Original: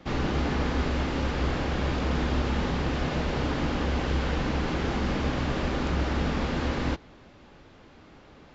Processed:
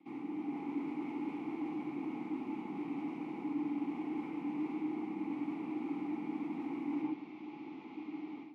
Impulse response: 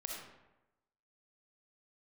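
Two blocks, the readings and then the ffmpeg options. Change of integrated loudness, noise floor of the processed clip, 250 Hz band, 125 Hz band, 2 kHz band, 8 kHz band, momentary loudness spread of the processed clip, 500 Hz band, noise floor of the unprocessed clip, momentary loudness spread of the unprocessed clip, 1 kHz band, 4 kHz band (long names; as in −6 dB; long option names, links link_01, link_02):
−11.5 dB, −49 dBFS, −5.5 dB, −26.5 dB, −19.5 dB, can't be measured, 7 LU, −15.0 dB, −52 dBFS, 1 LU, −13.5 dB, below −25 dB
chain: -filter_complex "[0:a]bandreject=frequency=920:width=11,acrossover=split=2500[link_01][link_02];[link_02]aeval=exprs='(mod(126*val(0)+1,2)-1)/126':channel_layout=same[link_03];[link_01][link_03]amix=inputs=2:normalize=0[link_04];[1:a]atrim=start_sample=2205,afade=type=out:start_time=0.24:duration=0.01,atrim=end_sample=11025[link_05];[link_04][link_05]afir=irnorm=-1:irlink=0,dynaudnorm=framelen=280:gausssize=3:maxgain=14.5dB,highpass=frequency=130:width=0.5412,highpass=frequency=130:width=1.3066,areverse,acompressor=threshold=-31dB:ratio=8,areverse,asplit=3[link_06][link_07][link_08];[link_06]bandpass=frequency=300:width_type=q:width=8,volume=0dB[link_09];[link_07]bandpass=frequency=870:width_type=q:width=8,volume=-6dB[link_10];[link_08]bandpass=frequency=2240:width_type=q:width=8,volume=-9dB[link_11];[link_09][link_10][link_11]amix=inputs=3:normalize=0,volume=3dB"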